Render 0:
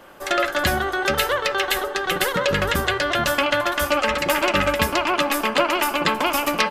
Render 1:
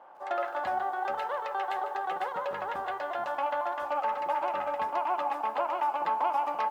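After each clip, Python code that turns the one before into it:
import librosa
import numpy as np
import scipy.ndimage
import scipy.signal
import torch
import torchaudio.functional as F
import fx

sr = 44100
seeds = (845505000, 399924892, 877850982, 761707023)

y = fx.rider(x, sr, range_db=10, speed_s=0.5)
y = fx.bandpass_q(y, sr, hz=830.0, q=4.9)
y = fx.echo_crushed(y, sr, ms=148, feedback_pct=35, bits=9, wet_db=-13.0)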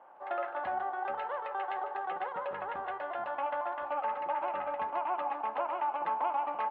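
y = scipy.signal.sosfilt(scipy.signal.butter(4, 3000.0, 'lowpass', fs=sr, output='sos'), x)
y = y * librosa.db_to_amplitude(-3.5)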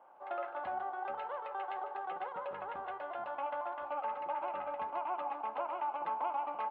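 y = fx.peak_eq(x, sr, hz=1800.0, db=-7.0, octaves=0.22)
y = y * librosa.db_to_amplitude(-4.0)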